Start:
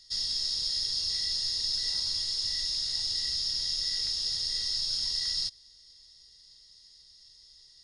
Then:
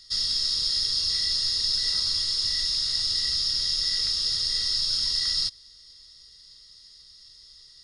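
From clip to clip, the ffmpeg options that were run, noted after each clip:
-af "equalizer=f=800:t=o:w=0.33:g=-11,equalizer=f=1250:t=o:w=0.33:g=9,equalizer=f=6300:t=o:w=0.33:g=-4,volume=2"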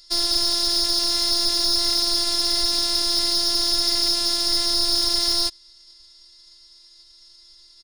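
-af "aecho=1:1:4.9:0.53,afftfilt=real='hypot(re,im)*cos(PI*b)':imag='0':win_size=512:overlap=0.75,aeval=exprs='0.224*(cos(1*acos(clip(val(0)/0.224,-1,1)))-cos(1*PI/2))+0.0158*(cos(6*acos(clip(val(0)/0.224,-1,1)))-cos(6*PI/2))+0.0126*(cos(7*acos(clip(val(0)/0.224,-1,1)))-cos(7*PI/2))':c=same,volume=2.24"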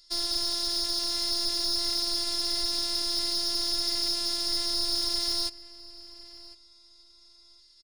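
-filter_complex "[0:a]asplit=2[s0][s1];[s1]adelay=1054,lowpass=f=3900:p=1,volume=0.141,asplit=2[s2][s3];[s3]adelay=1054,lowpass=f=3900:p=1,volume=0.22[s4];[s0][s2][s4]amix=inputs=3:normalize=0,volume=0.398"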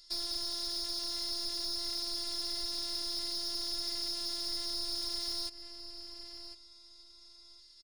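-af "acompressor=threshold=0.0316:ratio=12,volume=16.8,asoftclip=hard,volume=0.0596"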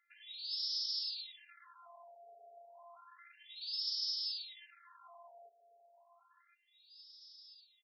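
-af "afftfilt=real='re*between(b*sr/1024,570*pow(4300/570,0.5+0.5*sin(2*PI*0.31*pts/sr))/1.41,570*pow(4300/570,0.5+0.5*sin(2*PI*0.31*pts/sr))*1.41)':imag='im*between(b*sr/1024,570*pow(4300/570,0.5+0.5*sin(2*PI*0.31*pts/sr))/1.41,570*pow(4300/570,0.5+0.5*sin(2*PI*0.31*pts/sr))*1.41)':win_size=1024:overlap=0.75"

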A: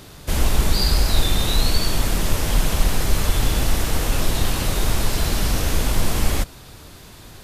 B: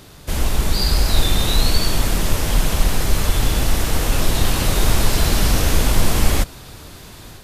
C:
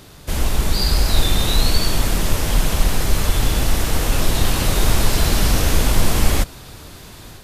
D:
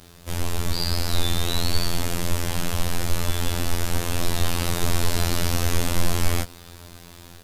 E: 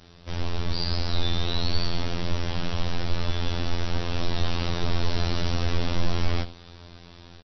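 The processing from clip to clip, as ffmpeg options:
-af "dynaudnorm=f=610:g=3:m=3.76,volume=0.891"
-af anull
-af "afftfilt=real='hypot(re,im)*cos(PI*b)':imag='0':win_size=2048:overlap=0.75,acrusher=bits=8:mix=0:aa=0.000001,volume=0.794"
-af "volume=1.58,asoftclip=hard,volume=0.631,aecho=1:1:81:0.168,volume=0.708" -ar 22050 -c:a mp2 -b:a 48k

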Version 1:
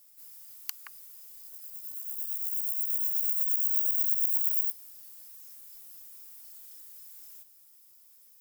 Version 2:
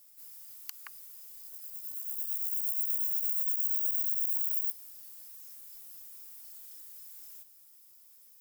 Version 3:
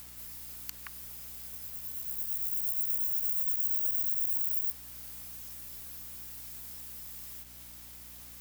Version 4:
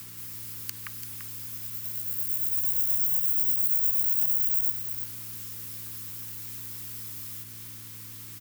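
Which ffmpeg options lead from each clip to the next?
-af "alimiter=limit=0.119:level=0:latency=1:release=64"
-filter_complex "[0:a]asplit=2[s0][s1];[s1]acompressor=mode=upward:threshold=0.0178:ratio=2.5,volume=1.26[s2];[s0][s2]amix=inputs=2:normalize=0,acrusher=bits=6:mix=0:aa=0.000001,aeval=exprs='val(0)+0.00355*(sin(2*PI*60*n/s)+sin(2*PI*2*60*n/s)/2+sin(2*PI*3*60*n/s)/3+sin(2*PI*4*60*n/s)/4+sin(2*PI*5*60*n/s)/5)':c=same,volume=0.447"
-af "afreqshift=49,asuperstop=centerf=690:order=4:qfactor=1.8,aecho=1:1:340:0.376,volume=1.78"

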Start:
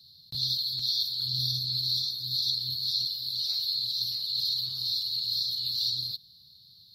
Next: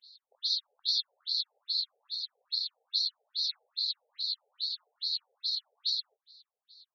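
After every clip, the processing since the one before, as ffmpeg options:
-af "equalizer=f=300:w=2.9:g=13.5,afftfilt=real='re*between(b*sr/1024,580*pow(5200/580,0.5+0.5*sin(2*PI*2.4*pts/sr))/1.41,580*pow(5200/580,0.5+0.5*sin(2*PI*2.4*pts/sr))*1.41)':imag='im*between(b*sr/1024,580*pow(5200/580,0.5+0.5*sin(2*PI*2.4*pts/sr))/1.41,580*pow(5200/580,0.5+0.5*sin(2*PI*2.4*pts/sr))*1.41)':win_size=1024:overlap=0.75"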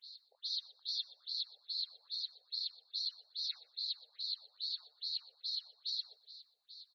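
-filter_complex "[0:a]areverse,acompressor=threshold=0.00891:ratio=4,areverse,asplit=2[s0][s1];[s1]adelay=122,lowpass=f=4000:p=1,volume=0.15,asplit=2[s2][s3];[s3]adelay=122,lowpass=f=4000:p=1,volume=0.35,asplit=2[s4][s5];[s5]adelay=122,lowpass=f=4000:p=1,volume=0.35[s6];[s0][s2][s4][s6]amix=inputs=4:normalize=0,volume=1.33"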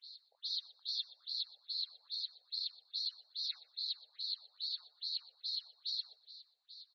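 -af "highpass=710,lowpass=5500,volume=1.12"

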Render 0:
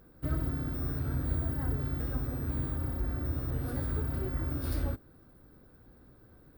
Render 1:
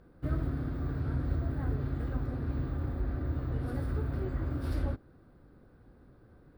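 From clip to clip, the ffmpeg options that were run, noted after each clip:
-af "aemphasis=mode=reproduction:type=50fm"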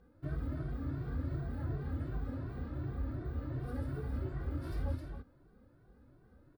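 -filter_complex "[0:a]aecho=1:1:264:0.531,asplit=2[s0][s1];[s1]adelay=2.1,afreqshift=2.7[s2];[s0][s2]amix=inputs=2:normalize=1,volume=0.708"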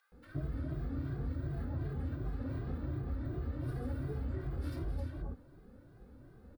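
-filter_complex "[0:a]acompressor=threshold=0.01:ratio=6,acrossover=split=1200[s0][s1];[s0]adelay=120[s2];[s2][s1]amix=inputs=2:normalize=0,volume=2"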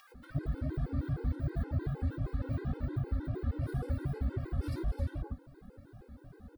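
-af "acompressor=mode=upward:threshold=0.00282:ratio=2.5,afftfilt=real='re*gt(sin(2*PI*6.4*pts/sr)*(1-2*mod(floor(b*sr/1024/270),2)),0)':imag='im*gt(sin(2*PI*6.4*pts/sr)*(1-2*mod(floor(b*sr/1024/270),2)),0)':win_size=1024:overlap=0.75,volume=2.11"

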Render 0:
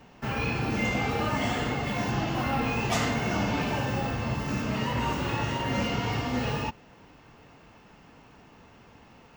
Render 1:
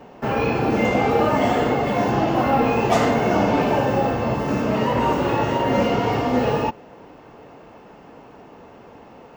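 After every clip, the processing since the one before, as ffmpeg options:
-af "equalizer=f=510:w=0.47:g=14"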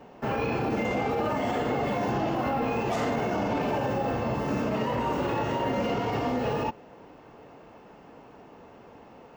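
-af "alimiter=limit=0.2:level=0:latency=1:release=32,volume=0.531"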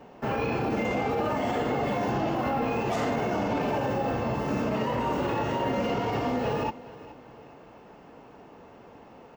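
-af "aecho=1:1:421|842|1263:0.119|0.0452|0.0172"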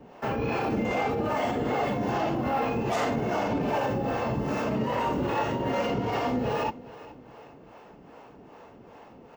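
-filter_complex "[0:a]acrossover=split=420[s0][s1];[s0]aeval=exprs='val(0)*(1-0.7/2+0.7/2*cos(2*PI*2.5*n/s))':c=same[s2];[s1]aeval=exprs='val(0)*(1-0.7/2-0.7/2*cos(2*PI*2.5*n/s))':c=same[s3];[s2][s3]amix=inputs=2:normalize=0,volume=1.5"

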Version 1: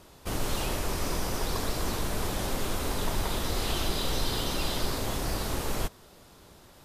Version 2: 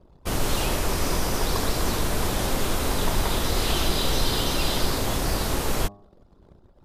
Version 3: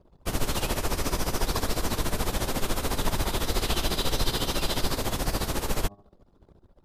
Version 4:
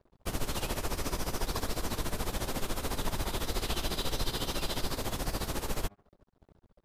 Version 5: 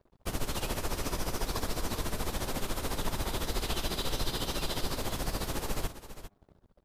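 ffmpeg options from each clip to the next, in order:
-af "anlmdn=0.00631,bandreject=f=101.2:t=h:w=4,bandreject=f=202.4:t=h:w=4,bandreject=f=303.6:t=h:w=4,bandreject=f=404.8:t=h:w=4,bandreject=f=506:t=h:w=4,bandreject=f=607.2:t=h:w=4,bandreject=f=708.4:t=h:w=4,bandreject=f=809.6:t=h:w=4,bandreject=f=910.8:t=h:w=4,bandreject=f=1012:t=h:w=4,bandreject=f=1113.2:t=h:w=4,bandreject=f=1214.4:t=h:w=4,volume=2"
-af "tremolo=f=14:d=0.75"
-filter_complex "[0:a]asplit=2[s0][s1];[s1]acompressor=threshold=0.0224:ratio=6,volume=1.12[s2];[s0][s2]amix=inputs=2:normalize=0,aeval=exprs='sgn(val(0))*max(abs(val(0))-0.00237,0)':c=same,volume=0.376"
-af "aecho=1:1:401:0.237"

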